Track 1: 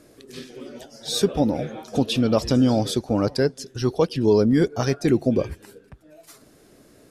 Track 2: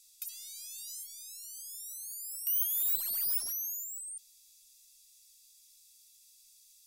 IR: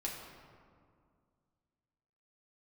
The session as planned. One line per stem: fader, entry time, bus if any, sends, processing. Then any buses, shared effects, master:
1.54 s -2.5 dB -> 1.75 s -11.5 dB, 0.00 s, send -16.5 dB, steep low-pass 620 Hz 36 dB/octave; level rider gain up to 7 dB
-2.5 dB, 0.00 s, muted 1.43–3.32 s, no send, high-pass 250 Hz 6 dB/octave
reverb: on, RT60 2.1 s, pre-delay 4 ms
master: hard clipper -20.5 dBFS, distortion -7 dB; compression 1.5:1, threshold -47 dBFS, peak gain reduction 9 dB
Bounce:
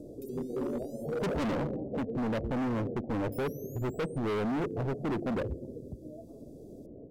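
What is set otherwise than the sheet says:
stem 1 -2.5 dB -> +9.0 dB; stem 2 -2.5 dB -> -12.0 dB

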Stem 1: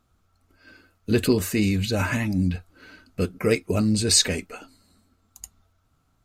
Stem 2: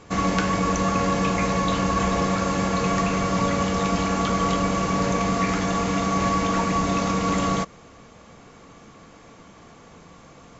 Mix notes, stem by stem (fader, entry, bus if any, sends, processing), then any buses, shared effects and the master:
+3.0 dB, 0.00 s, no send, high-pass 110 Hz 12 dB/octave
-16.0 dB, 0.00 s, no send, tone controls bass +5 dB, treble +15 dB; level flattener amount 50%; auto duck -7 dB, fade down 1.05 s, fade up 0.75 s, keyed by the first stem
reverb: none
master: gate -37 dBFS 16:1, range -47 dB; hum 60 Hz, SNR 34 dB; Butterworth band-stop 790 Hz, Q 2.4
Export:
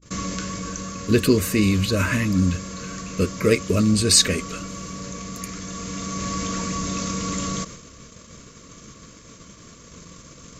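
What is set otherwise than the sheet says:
stem 1: missing high-pass 110 Hz 12 dB/octave; stem 2 -16.0 dB -> -8.5 dB

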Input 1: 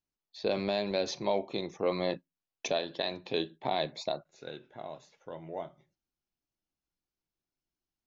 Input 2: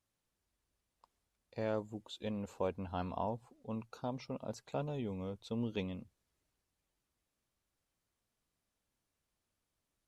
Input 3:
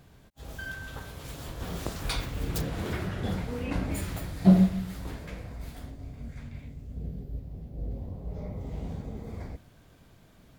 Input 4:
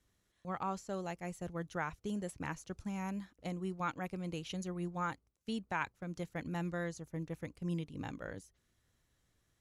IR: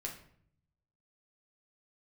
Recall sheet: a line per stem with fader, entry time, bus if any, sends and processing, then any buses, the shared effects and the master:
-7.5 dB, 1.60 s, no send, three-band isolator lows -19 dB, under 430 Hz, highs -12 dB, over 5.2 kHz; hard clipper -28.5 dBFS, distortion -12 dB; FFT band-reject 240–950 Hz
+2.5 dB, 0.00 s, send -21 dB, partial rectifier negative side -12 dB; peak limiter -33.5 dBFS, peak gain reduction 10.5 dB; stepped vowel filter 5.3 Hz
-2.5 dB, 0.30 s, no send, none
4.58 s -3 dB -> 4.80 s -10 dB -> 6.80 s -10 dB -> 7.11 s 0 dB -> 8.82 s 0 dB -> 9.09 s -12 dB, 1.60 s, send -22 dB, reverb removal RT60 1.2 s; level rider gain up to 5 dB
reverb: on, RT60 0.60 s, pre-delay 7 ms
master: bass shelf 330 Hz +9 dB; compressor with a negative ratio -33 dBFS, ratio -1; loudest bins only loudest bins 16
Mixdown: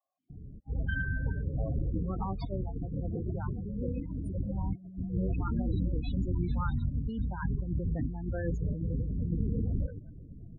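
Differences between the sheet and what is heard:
stem 1: entry 1.60 s -> 2.70 s; stem 2 +2.5 dB -> +8.5 dB

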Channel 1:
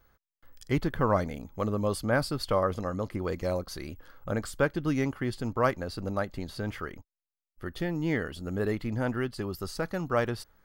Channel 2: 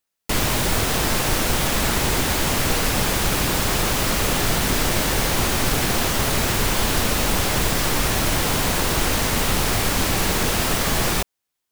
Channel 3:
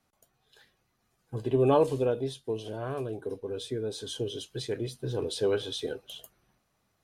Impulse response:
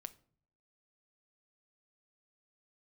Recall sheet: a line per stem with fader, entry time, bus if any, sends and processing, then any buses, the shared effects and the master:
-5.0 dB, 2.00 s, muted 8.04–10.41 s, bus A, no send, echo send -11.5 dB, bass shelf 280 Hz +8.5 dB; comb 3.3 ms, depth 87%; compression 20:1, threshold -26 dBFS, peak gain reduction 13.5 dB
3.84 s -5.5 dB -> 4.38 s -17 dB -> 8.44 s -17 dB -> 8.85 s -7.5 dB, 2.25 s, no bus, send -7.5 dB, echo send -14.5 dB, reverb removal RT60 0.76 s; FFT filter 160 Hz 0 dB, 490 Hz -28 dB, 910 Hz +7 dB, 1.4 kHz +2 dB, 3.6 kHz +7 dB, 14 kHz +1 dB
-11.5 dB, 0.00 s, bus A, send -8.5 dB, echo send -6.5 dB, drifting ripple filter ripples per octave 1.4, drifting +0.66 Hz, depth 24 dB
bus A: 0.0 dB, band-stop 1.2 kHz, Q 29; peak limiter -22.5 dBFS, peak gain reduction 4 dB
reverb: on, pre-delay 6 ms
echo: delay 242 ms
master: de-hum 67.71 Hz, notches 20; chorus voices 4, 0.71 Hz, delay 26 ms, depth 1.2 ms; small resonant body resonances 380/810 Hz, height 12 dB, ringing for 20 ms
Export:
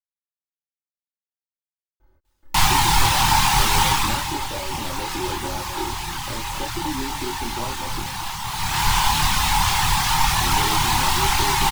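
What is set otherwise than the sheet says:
stem 2 -5.5 dB -> +2.0 dB; stem 3: muted; master: missing de-hum 67.71 Hz, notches 20

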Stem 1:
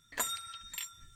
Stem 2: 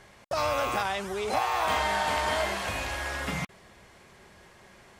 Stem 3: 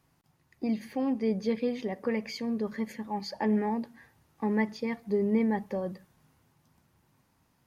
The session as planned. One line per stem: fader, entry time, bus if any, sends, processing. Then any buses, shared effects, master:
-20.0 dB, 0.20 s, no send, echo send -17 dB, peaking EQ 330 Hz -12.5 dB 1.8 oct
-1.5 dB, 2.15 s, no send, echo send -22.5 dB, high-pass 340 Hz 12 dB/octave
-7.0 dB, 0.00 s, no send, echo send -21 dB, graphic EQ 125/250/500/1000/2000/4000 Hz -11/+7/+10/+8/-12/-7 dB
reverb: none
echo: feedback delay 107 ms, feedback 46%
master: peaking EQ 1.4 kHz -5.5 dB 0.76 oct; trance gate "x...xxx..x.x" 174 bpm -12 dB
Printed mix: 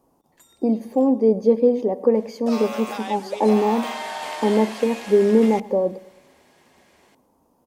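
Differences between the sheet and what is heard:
stem 3 -7.0 dB -> +3.5 dB; master: missing trance gate "x...xxx..x.x" 174 bpm -12 dB

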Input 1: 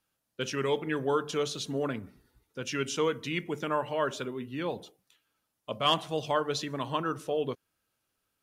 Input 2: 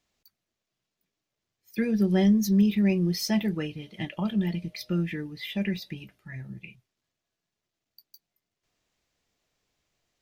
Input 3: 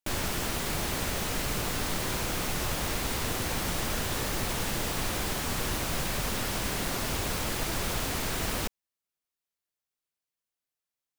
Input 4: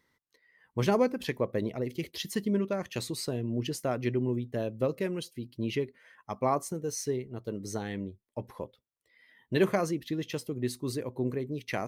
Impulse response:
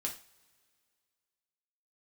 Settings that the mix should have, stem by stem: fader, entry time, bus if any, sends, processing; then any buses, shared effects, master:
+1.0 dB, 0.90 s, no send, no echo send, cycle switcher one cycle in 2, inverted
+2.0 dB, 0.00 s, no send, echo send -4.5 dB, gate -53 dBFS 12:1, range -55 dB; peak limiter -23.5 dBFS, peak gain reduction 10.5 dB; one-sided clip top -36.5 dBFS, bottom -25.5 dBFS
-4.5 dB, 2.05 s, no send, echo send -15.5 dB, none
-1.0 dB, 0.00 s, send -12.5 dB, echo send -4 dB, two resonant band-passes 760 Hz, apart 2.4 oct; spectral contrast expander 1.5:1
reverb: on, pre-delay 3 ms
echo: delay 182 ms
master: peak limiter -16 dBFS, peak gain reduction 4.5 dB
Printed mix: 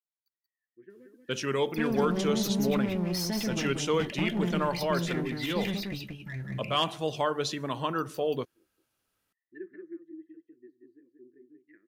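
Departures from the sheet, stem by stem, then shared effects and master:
stem 1: missing cycle switcher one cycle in 2, inverted; stem 3: muted; stem 4 -1.0 dB -> -11.0 dB

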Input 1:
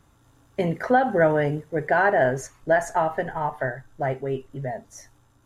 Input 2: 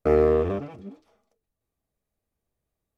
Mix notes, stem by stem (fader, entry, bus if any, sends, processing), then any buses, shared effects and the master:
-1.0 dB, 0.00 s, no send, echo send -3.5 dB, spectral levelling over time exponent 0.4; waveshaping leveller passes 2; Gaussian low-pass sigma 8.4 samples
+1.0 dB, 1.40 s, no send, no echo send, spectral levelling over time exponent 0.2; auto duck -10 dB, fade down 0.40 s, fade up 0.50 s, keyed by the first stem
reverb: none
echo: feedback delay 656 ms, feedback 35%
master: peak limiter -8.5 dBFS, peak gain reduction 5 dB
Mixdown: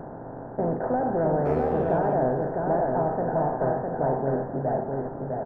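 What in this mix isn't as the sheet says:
stem 1 -1.0 dB -> -11.5 dB; stem 2: missing spectral levelling over time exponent 0.2

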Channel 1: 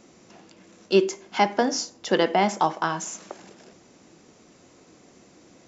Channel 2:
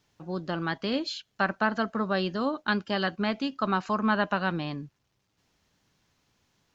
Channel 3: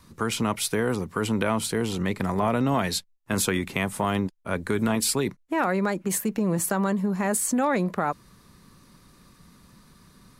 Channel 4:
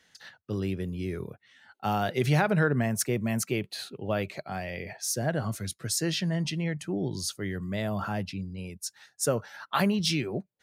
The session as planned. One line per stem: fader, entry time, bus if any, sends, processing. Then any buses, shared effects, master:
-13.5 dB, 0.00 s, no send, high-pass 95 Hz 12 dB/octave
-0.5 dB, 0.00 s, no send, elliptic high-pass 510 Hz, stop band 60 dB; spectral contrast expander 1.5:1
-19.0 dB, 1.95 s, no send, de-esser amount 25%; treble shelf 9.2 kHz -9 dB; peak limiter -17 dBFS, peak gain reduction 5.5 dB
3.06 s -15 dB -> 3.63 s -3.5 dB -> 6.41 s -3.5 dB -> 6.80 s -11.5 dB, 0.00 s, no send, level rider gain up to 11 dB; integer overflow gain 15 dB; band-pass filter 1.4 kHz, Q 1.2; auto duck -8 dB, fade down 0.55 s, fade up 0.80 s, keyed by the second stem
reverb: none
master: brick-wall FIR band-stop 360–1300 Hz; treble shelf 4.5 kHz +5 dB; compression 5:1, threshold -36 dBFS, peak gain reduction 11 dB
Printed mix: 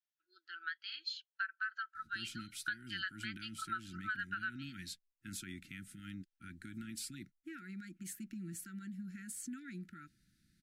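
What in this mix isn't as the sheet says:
stem 1: muted; stem 4: muted

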